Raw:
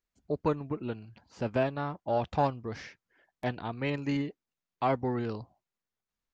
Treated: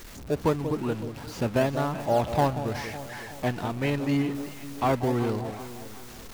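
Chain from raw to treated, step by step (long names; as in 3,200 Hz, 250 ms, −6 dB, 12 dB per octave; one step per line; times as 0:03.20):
converter with a step at zero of −40 dBFS
delay that swaps between a low-pass and a high-pass 186 ms, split 800 Hz, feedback 67%, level −9 dB
in parallel at −11 dB: sample-and-hold swept by an LFO 24×, swing 160% 0.87 Hz
on the sum: level +2.5 dB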